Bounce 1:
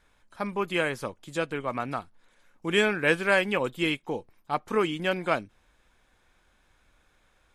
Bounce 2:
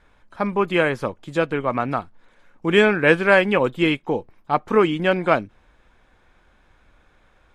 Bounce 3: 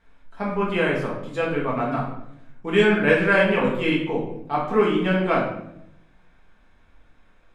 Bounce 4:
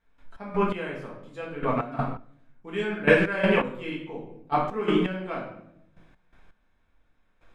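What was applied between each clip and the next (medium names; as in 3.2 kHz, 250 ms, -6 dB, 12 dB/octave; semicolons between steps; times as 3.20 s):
low-pass 2 kHz 6 dB/octave; trim +9 dB
simulated room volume 190 m³, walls mixed, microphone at 1.6 m; trim -8 dB
trance gate ".x.x...." 83 bpm -12 dB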